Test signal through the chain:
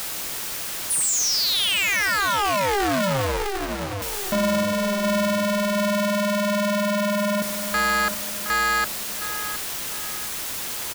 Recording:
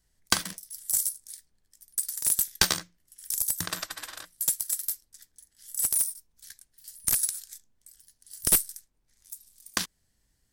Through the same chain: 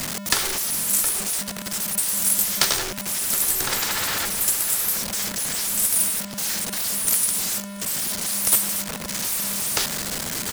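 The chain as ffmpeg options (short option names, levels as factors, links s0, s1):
-filter_complex "[0:a]aeval=exprs='val(0)+0.5*0.106*sgn(val(0))':c=same,asplit=2[s0][s1];[s1]adelay=717,lowpass=f=2600:p=1,volume=0.316,asplit=2[s2][s3];[s3]adelay=717,lowpass=f=2600:p=1,volume=0.41,asplit=2[s4][s5];[s5]adelay=717,lowpass=f=2600:p=1,volume=0.41,asplit=2[s6][s7];[s7]adelay=717,lowpass=f=2600:p=1,volume=0.41[s8];[s0][s2][s4][s6][s8]amix=inputs=5:normalize=0,acrossover=split=260|2000[s9][s10][s11];[s9]acompressor=threshold=0.0126:ratio=4[s12];[s12][s10][s11]amix=inputs=3:normalize=0,aeval=exprs='val(0)*sgn(sin(2*PI*200*n/s))':c=same"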